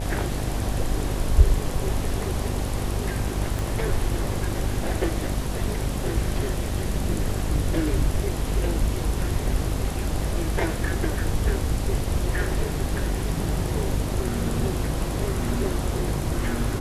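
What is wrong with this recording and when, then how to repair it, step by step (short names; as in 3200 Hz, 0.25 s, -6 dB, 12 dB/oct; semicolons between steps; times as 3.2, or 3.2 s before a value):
buzz 50 Hz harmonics 16 -29 dBFS
3.59 pop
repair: de-click; de-hum 50 Hz, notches 16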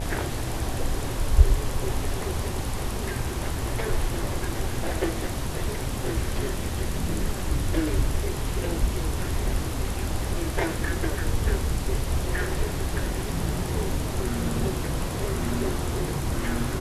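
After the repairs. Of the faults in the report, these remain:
3.59 pop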